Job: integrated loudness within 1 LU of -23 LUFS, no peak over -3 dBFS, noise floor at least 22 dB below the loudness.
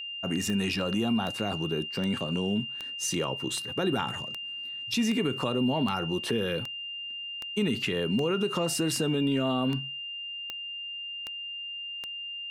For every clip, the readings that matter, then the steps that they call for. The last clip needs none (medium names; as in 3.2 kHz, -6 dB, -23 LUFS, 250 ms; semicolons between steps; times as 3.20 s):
clicks found 16; steady tone 2.8 kHz; tone level -35 dBFS; loudness -30.0 LUFS; peak level -14.5 dBFS; loudness target -23.0 LUFS
-> de-click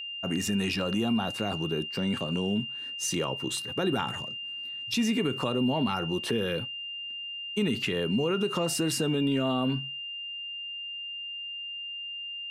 clicks found 0; steady tone 2.8 kHz; tone level -35 dBFS
-> band-stop 2.8 kHz, Q 30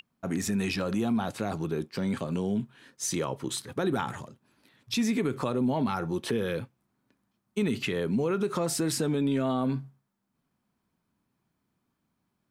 steady tone not found; loudness -30.0 LUFS; peak level -15.5 dBFS; loudness target -23.0 LUFS
-> trim +7 dB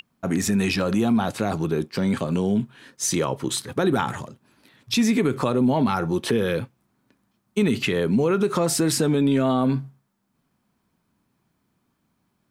loudness -23.0 LUFS; peak level -8.5 dBFS; noise floor -72 dBFS